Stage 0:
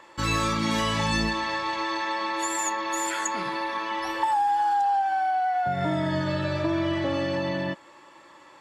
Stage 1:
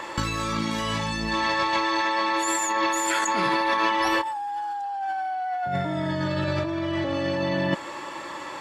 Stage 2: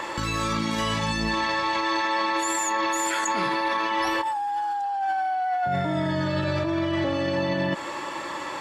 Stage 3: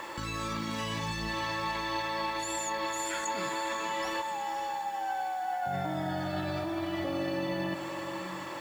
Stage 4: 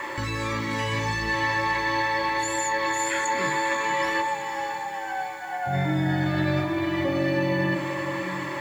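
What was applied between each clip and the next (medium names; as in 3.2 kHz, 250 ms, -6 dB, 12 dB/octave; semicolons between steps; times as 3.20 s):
compressor with a negative ratio -34 dBFS, ratio -1; trim +8 dB
peak limiter -19.5 dBFS, peak gain reduction 8 dB; trim +3 dB
echo that smears into a reverb 527 ms, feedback 55%, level -7.5 dB; word length cut 8-bit, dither none; trim -8.5 dB
reverberation RT60 0.25 s, pre-delay 3 ms, DRR 2.5 dB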